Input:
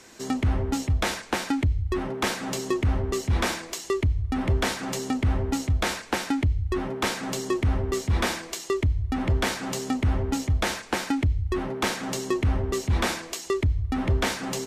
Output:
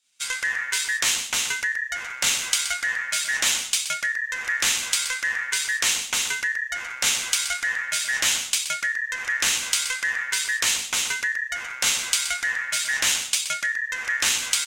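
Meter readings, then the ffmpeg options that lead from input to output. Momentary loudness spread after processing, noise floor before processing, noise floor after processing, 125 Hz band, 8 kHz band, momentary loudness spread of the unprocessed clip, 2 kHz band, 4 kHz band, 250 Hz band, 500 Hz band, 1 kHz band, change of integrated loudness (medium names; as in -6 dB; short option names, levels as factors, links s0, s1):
5 LU, -42 dBFS, -37 dBFS, under -25 dB, +13.5 dB, 4 LU, +10.5 dB, +10.0 dB, -22.0 dB, -16.0 dB, -3.5 dB, +4.0 dB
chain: -filter_complex "[0:a]agate=range=0.0224:threshold=0.02:ratio=3:detection=peak,highshelf=f=3300:t=q:w=3:g=12.5,aeval=exprs='val(0)*sin(2*PI*1800*n/s)':c=same,asplit=2[s0][s1];[s1]aecho=0:1:125:0.316[s2];[s0][s2]amix=inputs=2:normalize=0,volume=0.891"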